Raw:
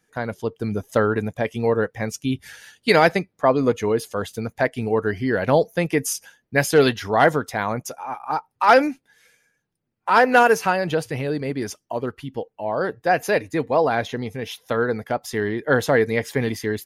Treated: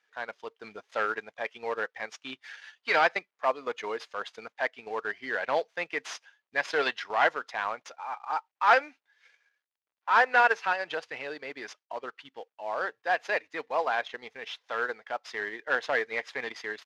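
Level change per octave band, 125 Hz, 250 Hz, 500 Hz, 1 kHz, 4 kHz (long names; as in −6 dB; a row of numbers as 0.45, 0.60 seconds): below −30 dB, −22.5 dB, −12.5 dB, −6.5 dB, −7.0 dB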